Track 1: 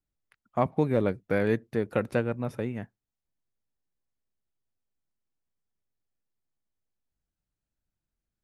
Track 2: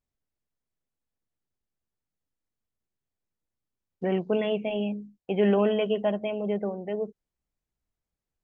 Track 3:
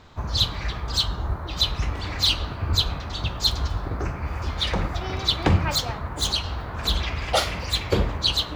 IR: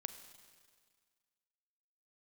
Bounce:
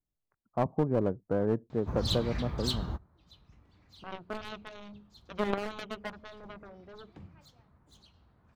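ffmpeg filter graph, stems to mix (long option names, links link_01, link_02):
-filter_complex "[0:a]lowpass=frequency=1100:width=0.5412,lowpass=frequency=1100:width=1.3066,volume=-2.5dB,asplit=2[link_01][link_02];[1:a]aeval=exprs='0.266*(cos(1*acos(clip(val(0)/0.266,-1,1)))-cos(1*PI/2))+0.0168*(cos(2*acos(clip(val(0)/0.266,-1,1)))-cos(2*PI/2))+0.0944*(cos(3*acos(clip(val(0)/0.266,-1,1)))-cos(3*PI/2))+0.00422*(cos(7*acos(clip(val(0)/0.266,-1,1)))-cos(7*PI/2))':channel_layout=same,volume=0.5dB[link_03];[2:a]equalizer=frequency=190:width=0.72:gain=10.5,adelay=1700,volume=-10dB[link_04];[link_02]apad=whole_len=452349[link_05];[link_04][link_05]sidechaingate=range=-27dB:threshold=-53dB:ratio=16:detection=peak[link_06];[link_01][link_03][link_06]amix=inputs=3:normalize=0,aeval=exprs='clip(val(0),-1,0.0422)':channel_layout=same"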